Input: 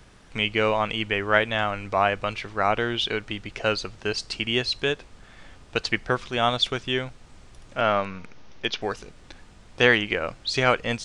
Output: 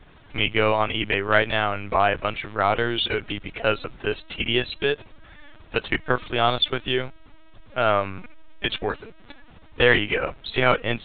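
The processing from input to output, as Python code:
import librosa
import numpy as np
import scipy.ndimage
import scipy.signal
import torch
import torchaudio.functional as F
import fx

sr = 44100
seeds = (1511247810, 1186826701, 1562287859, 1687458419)

p1 = (np.mod(10.0 ** (9.5 / 20.0) * x + 1.0, 2.0) - 1.0) / 10.0 ** (9.5 / 20.0)
p2 = x + (p1 * librosa.db_to_amplitude(-11.0))
y = fx.lpc_vocoder(p2, sr, seeds[0], excitation='pitch_kept', order=16)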